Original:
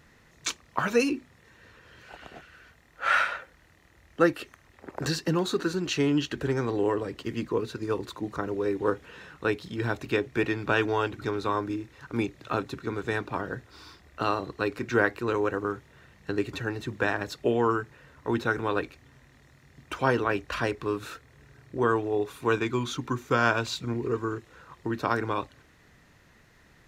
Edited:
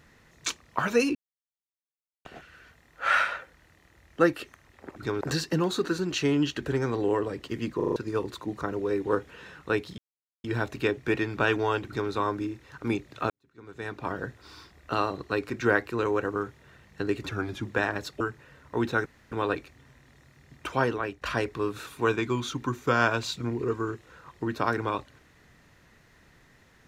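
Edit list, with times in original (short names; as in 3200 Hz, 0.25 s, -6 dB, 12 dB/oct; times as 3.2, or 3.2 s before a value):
1.15–2.25 mute
7.51 stutter in place 0.04 s, 5 plays
9.73 insert silence 0.46 s
11.15–11.4 copy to 4.96
12.59–13.41 fade in quadratic
16.58–16.9 speed 90%
17.46–17.73 cut
18.58 insert room tone 0.26 s
19.98–20.48 fade out, to -9.5 dB
21.13–22.3 cut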